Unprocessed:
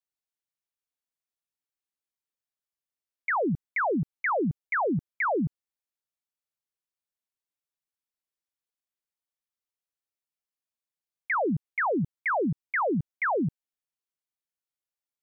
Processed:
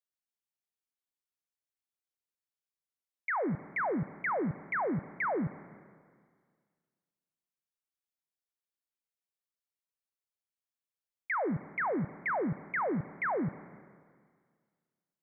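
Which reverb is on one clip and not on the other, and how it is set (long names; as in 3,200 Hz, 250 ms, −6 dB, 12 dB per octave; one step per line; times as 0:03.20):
four-comb reverb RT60 1.9 s, combs from 30 ms, DRR 14.5 dB
level −5.5 dB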